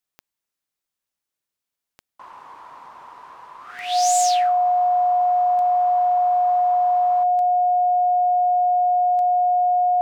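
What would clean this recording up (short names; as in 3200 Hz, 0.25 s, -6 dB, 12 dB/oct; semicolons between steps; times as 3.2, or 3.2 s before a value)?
de-click; notch 720 Hz, Q 30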